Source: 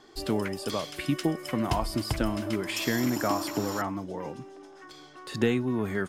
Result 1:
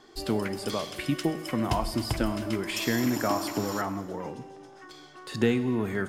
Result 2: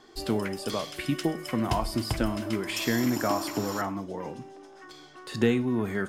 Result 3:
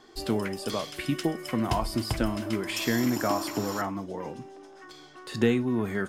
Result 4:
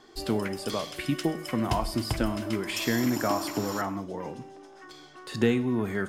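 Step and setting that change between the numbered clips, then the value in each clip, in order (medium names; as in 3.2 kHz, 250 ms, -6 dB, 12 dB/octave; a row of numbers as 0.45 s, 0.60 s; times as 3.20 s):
gated-style reverb, gate: 500 ms, 140 ms, 90 ms, 200 ms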